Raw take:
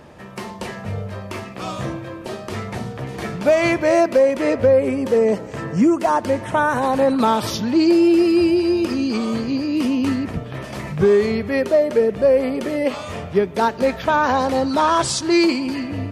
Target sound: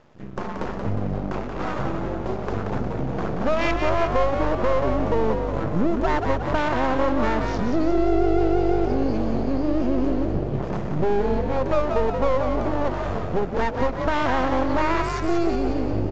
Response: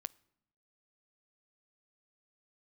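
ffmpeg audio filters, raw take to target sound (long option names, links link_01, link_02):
-filter_complex "[0:a]aeval=exprs='0.562*sin(PI/2*1.58*val(0)/0.562)':channel_layout=same,acompressor=threshold=-20dB:ratio=2.5,afwtdn=0.0794,aeval=exprs='max(val(0),0)':channel_layout=same,asplit=2[link_01][link_02];[link_02]asplit=7[link_03][link_04][link_05][link_06][link_07][link_08][link_09];[link_03]adelay=180,afreqshift=49,volume=-5.5dB[link_10];[link_04]adelay=360,afreqshift=98,volume=-11.2dB[link_11];[link_05]adelay=540,afreqshift=147,volume=-16.9dB[link_12];[link_06]adelay=720,afreqshift=196,volume=-22.5dB[link_13];[link_07]adelay=900,afreqshift=245,volume=-28.2dB[link_14];[link_08]adelay=1080,afreqshift=294,volume=-33.9dB[link_15];[link_09]adelay=1260,afreqshift=343,volume=-39.6dB[link_16];[link_10][link_11][link_12][link_13][link_14][link_15][link_16]amix=inputs=7:normalize=0[link_17];[link_01][link_17]amix=inputs=2:normalize=0,aresample=16000,aresample=44100"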